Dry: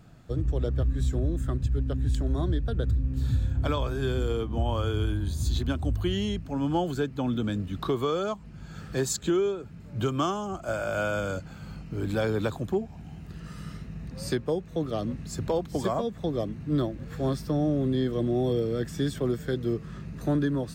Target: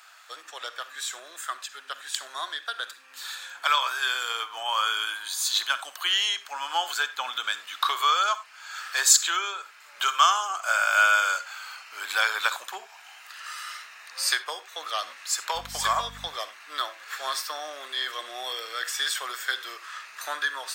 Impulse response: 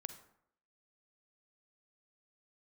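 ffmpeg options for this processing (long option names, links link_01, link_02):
-filter_complex "[0:a]highpass=frequency=1100:width=0.5412,highpass=frequency=1100:width=1.3066,asettb=1/sr,asplit=3[link_01][link_02][link_03];[link_01]atrim=end=15.554[link_04];[link_02]atrim=start=15.55:end=16.28,asetpts=PTS-STARTPTS,afade=type=in:duration=0.004:curve=qsin,afade=type=out:start_time=0.726:duration=0.004:curve=qsin,aeval=exprs='val(0)+0.00112*(sin(2*PI*50*n/s)+sin(2*PI*2*50*n/s)/2+sin(2*PI*3*50*n/s)/3+sin(2*PI*4*50*n/s)/4+sin(2*PI*5*50*n/s)/5)':channel_layout=same[link_05];[link_03]atrim=start=16.276[link_06];[link_04][link_05]acrossfade=duration=0.004:curve1=hsin:curve2=qsin[link_07];[link_07][link_06]acrossfade=duration=0.004:curve1=qsin:curve2=hsin,asplit=2[link_08][link_09];[1:a]atrim=start_sample=2205,afade=type=out:start_time=0.15:duration=0.01,atrim=end_sample=7056[link_10];[link_09][link_10]afir=irnorm=-1:irlink=0,volume=10dB[link_11];[link_08][link_11]amix=inputs=2:normalize=0,volume=4.5dB"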